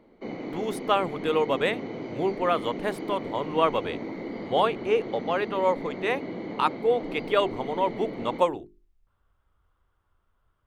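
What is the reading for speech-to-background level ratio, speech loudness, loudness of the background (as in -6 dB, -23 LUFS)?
8.5 dB, -27.5 LUFS, -36.0 LUFS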